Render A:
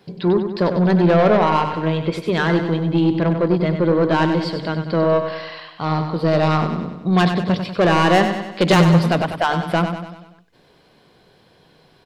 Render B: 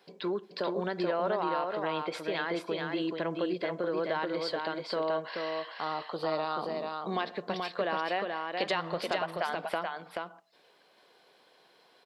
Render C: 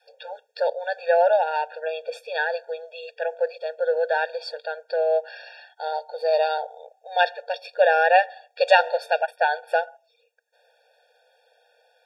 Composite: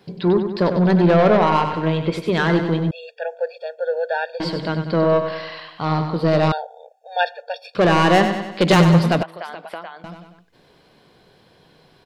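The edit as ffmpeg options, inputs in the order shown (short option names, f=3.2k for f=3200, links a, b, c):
-filter_complex "[2:a]asplit=2[a][b];[0:a]asplit=4[c][d][e][f];[c]atrim=end=2.912[g];[a]atrim=start=2.908:end=4.402[h];[d]atrim=start=4.398:end=6.522[i];[b]atrim=start=6.518:end=7.752[j];[e]atrim=start=7.748:end=9.232[k];[1:a]atrim=start=9.228:end=10.042[l];[f]atrim=start=10.038[m];[g][h]acrossfade=d=0.004:c1=hsin:c2=hsin[n];[n][i]acrossfade=d=0.004:c1=hsin:c2=hsin[o];[o][j]acrossfade=d=0.004:c1=hsin:c2=hsin[p];[p][k]acrossfade=d=0.004:c1=hsin:c2=hsin[q];[q][l]acrossfade=d=0.004:c1=hsin:c2=hsin[r];[r][m]acrossfade=d=0.004:c1=hsin:c2=hsin"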